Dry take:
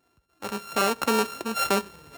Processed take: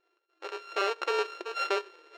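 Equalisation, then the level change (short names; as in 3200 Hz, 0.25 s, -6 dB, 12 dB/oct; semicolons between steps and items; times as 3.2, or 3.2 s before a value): brick-wall FIR high-pass 320 Hz; air absorption 180 m; bell 810 Hz -7.5 dB 1.5 oct; 0.0 dB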